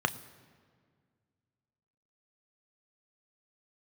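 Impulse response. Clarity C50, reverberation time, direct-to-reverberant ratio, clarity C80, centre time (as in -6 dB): 17.5 dB, 1.9 s, 9.5 dB, 18.0 dB, 6 ms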